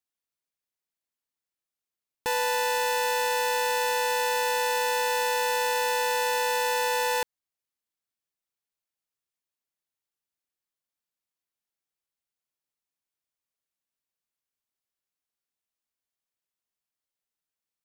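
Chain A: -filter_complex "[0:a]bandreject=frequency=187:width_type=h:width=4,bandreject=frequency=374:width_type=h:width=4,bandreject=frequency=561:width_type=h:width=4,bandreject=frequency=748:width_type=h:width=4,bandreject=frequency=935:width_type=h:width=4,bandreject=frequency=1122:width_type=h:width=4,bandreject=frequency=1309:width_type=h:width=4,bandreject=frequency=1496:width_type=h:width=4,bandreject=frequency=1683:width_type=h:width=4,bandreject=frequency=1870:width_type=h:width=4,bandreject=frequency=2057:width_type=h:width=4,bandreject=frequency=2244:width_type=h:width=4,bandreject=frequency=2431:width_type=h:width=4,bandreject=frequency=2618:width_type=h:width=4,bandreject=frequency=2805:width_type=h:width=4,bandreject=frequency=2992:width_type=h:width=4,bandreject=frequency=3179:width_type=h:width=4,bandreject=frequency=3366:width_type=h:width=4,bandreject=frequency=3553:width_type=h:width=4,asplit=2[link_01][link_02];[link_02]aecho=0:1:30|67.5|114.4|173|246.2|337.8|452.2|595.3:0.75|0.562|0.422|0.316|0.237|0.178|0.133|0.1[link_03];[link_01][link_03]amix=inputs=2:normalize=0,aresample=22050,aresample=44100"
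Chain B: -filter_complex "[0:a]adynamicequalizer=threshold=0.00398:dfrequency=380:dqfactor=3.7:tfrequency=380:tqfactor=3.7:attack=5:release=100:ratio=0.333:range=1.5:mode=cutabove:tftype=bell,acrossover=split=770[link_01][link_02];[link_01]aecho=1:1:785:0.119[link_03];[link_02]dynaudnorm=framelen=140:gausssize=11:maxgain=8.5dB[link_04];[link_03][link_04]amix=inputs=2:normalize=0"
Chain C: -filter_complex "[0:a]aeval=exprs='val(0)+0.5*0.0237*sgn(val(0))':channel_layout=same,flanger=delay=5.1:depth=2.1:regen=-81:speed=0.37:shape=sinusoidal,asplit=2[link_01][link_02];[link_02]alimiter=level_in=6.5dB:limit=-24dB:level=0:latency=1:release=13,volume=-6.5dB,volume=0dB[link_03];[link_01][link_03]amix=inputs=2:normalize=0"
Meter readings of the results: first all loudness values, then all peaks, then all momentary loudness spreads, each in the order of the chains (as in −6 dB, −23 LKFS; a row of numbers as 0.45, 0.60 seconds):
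−24.5, −19.0, −30.0 LKFS; −14.5, −5.5, −17.5 dBFS; 4, 2, 11 LU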